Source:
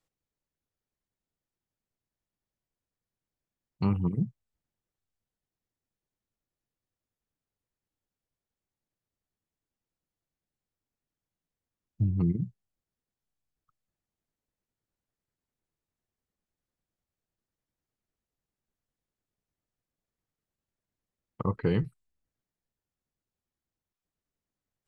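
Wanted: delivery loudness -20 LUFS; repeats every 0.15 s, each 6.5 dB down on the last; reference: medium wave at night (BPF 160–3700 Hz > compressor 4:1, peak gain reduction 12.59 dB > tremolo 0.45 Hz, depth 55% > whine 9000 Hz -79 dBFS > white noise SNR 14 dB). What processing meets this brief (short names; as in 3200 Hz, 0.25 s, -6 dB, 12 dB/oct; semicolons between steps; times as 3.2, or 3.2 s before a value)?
BPF 160–3700 Hz; feedback echo 0.15 s, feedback 47%, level -6.5 dB; compressor 4:1, threshold -37 dBFS; tremolo 0.45 Hz, depth 55%; whine 9000 Hz -79 dBFS; white noise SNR 14 dB; gain +26.5 dB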